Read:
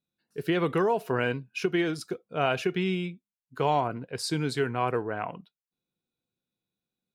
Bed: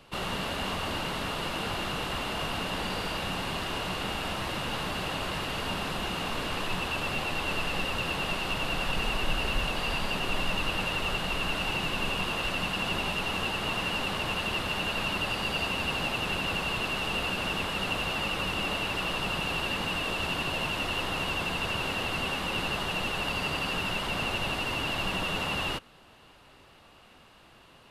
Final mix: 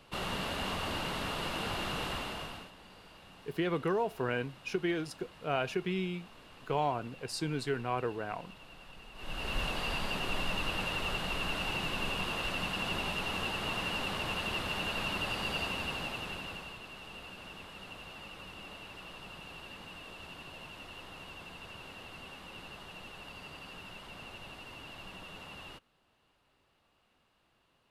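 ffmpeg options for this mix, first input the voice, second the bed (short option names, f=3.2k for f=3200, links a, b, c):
-filter_complex "[0:a]adelay=3100,volume=-6dB[a];[1:a]volume=14.5dB,afade=t=out:st=2.07:d=0.65:silence=0.112202,afade=t=in:st=9.14:d=0.47:silence=0.125893,afade=t=out:st=15.55:d=1.24:silence=0.237137[b];[a][b]amix=inputs=2:normalize=0"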